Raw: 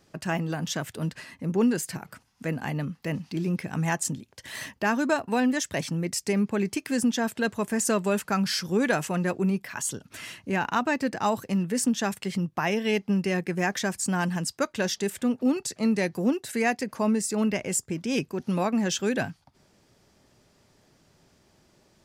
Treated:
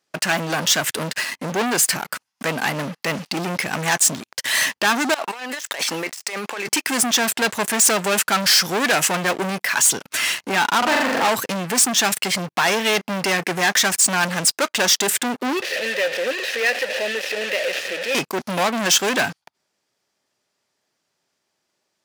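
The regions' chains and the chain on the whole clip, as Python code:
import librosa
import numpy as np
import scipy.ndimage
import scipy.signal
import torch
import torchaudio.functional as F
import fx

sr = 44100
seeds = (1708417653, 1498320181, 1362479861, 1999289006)

y = fx.chain(x, sr, fx.highpass(hz=570.0, slope=12),
    fx.over_compress(threshold_db=-42.0, ratio=-1.0),
    fx.high_shelf(hz=4200.0, db=-5.5), at=(5.14, 6.68))
y = fx.chain(y, sr, fx.high_shelf(hz=2300.0, db=-9.5),
    fx.hum_notches(base_hz=60, count=4),
    fx.room_flutter(wall_m=7.3, rt60_s=0.82), at=(10.78, 11.29))
y = fx.chain(y, sr, fx.delta_mod(bps=32000, step_db=-23.5),
    fx.vowel_filter(vowel='e'),
    fx.high_shelf(hz=3700.0, db=8.0), at=(15.62, 18.15))
y = fx.leveller(y, sr, passes=5)
y = fx.highpass(y, sr, hz=960.0, slope=6)
y = y * 10.0 ** (2.0 / 20.0)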